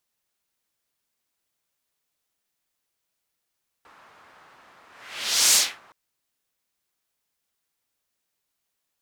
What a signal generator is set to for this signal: whoosh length 2.07 s, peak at 1.70 s, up 0.74 s, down 0.28 s, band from 1.2 kHz, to 6.7 kHz, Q 1.4, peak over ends 37 dB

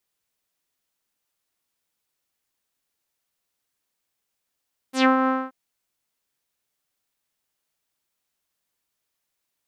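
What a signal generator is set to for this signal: synth note saw C4 12 dB/octave, low-pass 1.3 kHz, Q 3.2, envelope 3.5 oct, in 0.14 s, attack 115 ms, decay 0.12 s, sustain -5.5 dB, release 0.23 s, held 0.35 s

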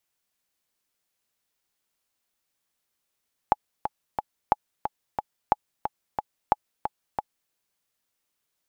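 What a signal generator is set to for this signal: metronome 180 bpm, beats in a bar 3, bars 4, 845 Hz, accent 8 dB -5 dBFS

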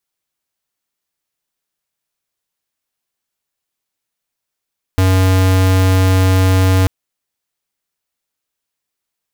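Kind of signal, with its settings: tone square 93.9 Hz -11 dBFS 1.89 s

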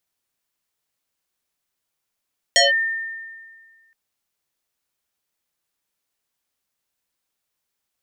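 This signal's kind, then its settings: FM tone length 1.37 s, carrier 1.81 kHz, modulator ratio 0.69, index 4.7, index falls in 0.16 s linear, decay 1.74 s, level -10 dB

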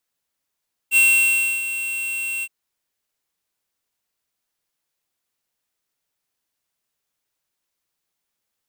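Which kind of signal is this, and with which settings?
ADSR square 2.72 kHz, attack 54 ms, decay 649 ms, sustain -12.5 dB, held 1.52 s, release 49 ms -13.5 dBFS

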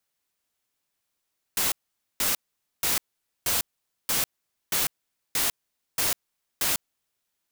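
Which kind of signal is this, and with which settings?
noise bursts white, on 0.15 s, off 0.48 s, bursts 9, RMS -24.5 dBFS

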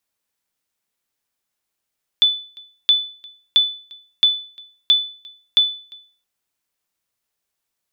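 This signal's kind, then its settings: sonar ping 3.49 kHz, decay 0.43 s, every 0.67 s, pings 6, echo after 0.35 s, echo -25.5 dB -6.5 dBFS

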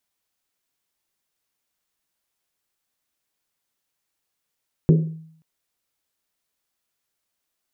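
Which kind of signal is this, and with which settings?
Risset drum length 0.53 s, pitch 160 Hz, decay 0.67 s, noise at 380 Hz, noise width 260 Hz, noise 20%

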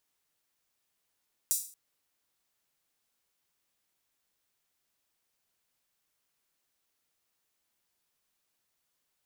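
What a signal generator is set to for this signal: open hi-hat length 0.23 s, high-pass 7.3 kHz, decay 0.42 s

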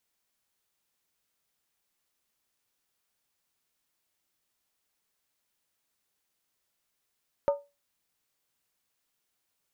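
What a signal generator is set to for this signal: skin hit, lowest mode 570 Hz, decay 0.25 s, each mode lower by 9 dB, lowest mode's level -18 dB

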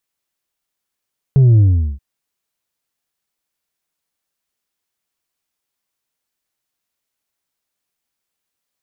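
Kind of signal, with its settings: sub drop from 140 Hz, over 0.63 s, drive 3.5 dB, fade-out 0.40 s, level -7 dB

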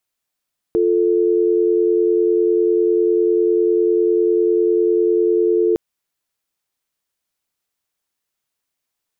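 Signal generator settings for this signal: call progress tone dial tone, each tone -15.5 dBFS 5.01 s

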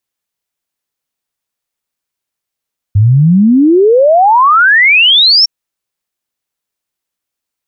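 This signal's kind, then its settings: log sweep 97 Hz -> 5.6 kHz 2.51 s -3.5 dBFS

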